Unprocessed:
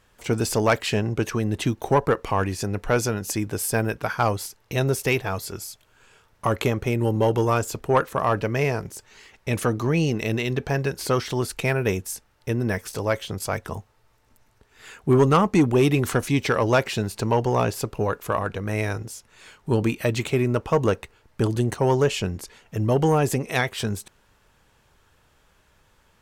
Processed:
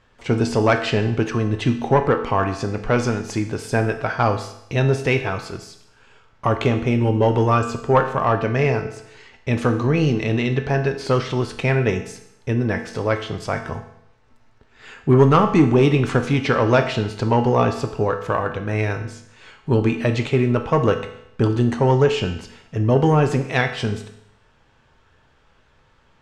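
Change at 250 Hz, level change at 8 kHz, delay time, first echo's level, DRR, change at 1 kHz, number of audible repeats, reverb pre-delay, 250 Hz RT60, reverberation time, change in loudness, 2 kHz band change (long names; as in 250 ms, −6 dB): +4.0 dB, −7.0 dB, no echo audible, no echo audible, 5.5 dB, +3.5 dB, no echo audible, 5 ms, 0.75 s, 0.75 s, +3.5 dB, +3.0 dB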